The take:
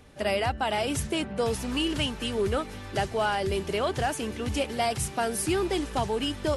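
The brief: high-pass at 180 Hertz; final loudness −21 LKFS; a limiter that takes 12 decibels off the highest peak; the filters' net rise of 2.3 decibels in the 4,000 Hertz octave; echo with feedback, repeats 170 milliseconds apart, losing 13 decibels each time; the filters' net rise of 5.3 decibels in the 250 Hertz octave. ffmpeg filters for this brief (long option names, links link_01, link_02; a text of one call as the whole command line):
ffmpeg -i in.wav -af "highpass=180,equalizer=frequency=250:width_type=o:gain=8,equalizer=frequency=4000:width_type=o:gain=3.5,alimiter=limit=-23.5dB:level=0:latency=1,aecho=1:1:170|340|510:0.224|0.0493|0.0108,volume=10.5dB" out.wav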